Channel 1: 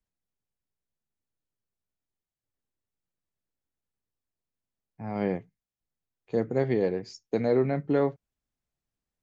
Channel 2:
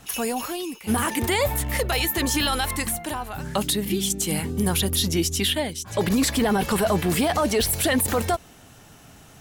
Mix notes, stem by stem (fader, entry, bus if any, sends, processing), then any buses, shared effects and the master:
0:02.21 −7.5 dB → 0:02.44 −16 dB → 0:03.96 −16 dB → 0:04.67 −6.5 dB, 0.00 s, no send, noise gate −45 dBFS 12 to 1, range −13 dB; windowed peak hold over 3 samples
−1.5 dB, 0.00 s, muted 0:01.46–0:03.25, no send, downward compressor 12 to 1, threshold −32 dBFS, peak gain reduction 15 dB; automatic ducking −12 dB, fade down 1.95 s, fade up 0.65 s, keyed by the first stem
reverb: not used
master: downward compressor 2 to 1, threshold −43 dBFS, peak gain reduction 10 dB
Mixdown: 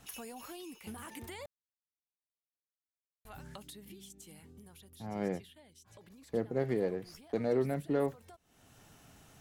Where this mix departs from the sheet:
stem 2 −1.5 dB → −10.5 dB
master: missing downward compressor 2 to 1, threshold −43 dBFS, peak gain reduction 10 dB

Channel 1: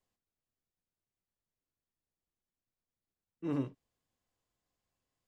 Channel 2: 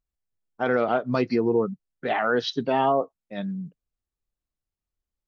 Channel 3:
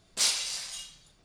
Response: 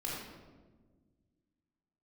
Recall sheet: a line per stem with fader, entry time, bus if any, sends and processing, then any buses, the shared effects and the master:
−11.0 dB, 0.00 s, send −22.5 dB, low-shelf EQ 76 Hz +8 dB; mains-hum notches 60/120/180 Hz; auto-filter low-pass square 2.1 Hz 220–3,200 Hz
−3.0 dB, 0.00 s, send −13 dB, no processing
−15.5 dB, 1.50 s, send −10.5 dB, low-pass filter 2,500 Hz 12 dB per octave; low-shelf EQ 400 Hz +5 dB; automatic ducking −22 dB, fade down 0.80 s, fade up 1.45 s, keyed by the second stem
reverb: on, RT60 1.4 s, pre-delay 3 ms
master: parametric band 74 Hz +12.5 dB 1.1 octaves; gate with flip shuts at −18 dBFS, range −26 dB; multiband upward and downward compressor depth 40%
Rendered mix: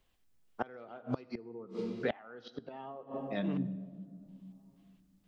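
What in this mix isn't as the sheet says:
stem 1 −11.0 dB → −4.5 dB
master: missing parametric band 74 Hz +12.5 dB 1.1 octaves

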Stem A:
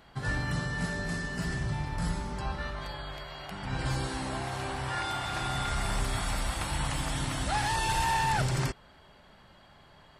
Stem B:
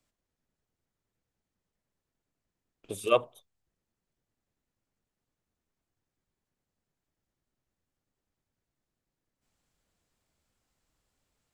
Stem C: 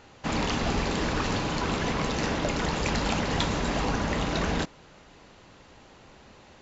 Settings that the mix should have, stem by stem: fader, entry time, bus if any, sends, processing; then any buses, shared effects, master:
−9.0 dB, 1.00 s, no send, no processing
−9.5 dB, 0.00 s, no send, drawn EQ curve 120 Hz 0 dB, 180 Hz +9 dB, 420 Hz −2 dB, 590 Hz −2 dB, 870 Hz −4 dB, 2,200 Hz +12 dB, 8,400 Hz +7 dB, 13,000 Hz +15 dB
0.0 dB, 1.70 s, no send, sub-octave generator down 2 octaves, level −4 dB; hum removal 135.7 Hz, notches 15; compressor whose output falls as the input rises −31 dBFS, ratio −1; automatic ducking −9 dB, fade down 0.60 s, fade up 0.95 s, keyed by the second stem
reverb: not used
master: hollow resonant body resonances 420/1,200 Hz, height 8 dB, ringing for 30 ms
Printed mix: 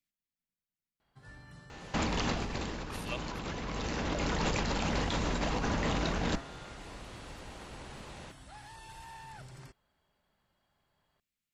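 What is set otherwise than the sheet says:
stem A −9.0 dB → −21.0 dB
stem B −9.5 dB → −18.5 dB
master: missing hollow resonant body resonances 420/1,200 Hz, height 8 dB, ringing for 30 ms

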